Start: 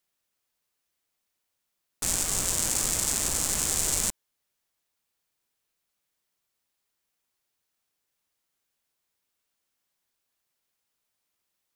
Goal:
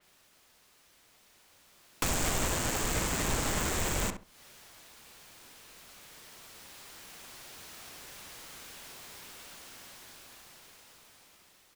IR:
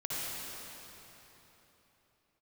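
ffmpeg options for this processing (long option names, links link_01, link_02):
-filter_complex "[0:a]highshelf=frequency=8400:gain=-8.5,dynaudnorm=framelen=710:gausssize=7:maxgain=16dB,alimiter=limit=-12.5dB:level=0:latency=1:release=95,acompressor=threshold=-43dB:ratio=6,aeval=exprs='0.0631*sin(PI/2*5.01*val(0)/0.0631)':channel_layout=same,asplit=2[link_01][link_02];[link_02]adelay=66,lowpass=frequency=1800:poles=1,volume=-7dB,asplit=2[link_03][link_04];[link_04]adelay=66,lowpass=frequency=1800:poles=1,volume=0.22,asplit=2[link_05][link_06];[link_06]adelay=66,lowpass=frequency=1800:poles=1,volume=0.22[link_07];[link_01][link_03][link_05][link_07]amix=inputs=4:normalize=0,adynamicequalizer=threshold=0.00501:dfrequency=3700:dqfactor=0.7:tfrequency=3700:tqfactor=0.7:attack=5:release=100:ratio=0.375:range=1.5:mode=cutabove:tftype=highshelf,volume=2.5dB"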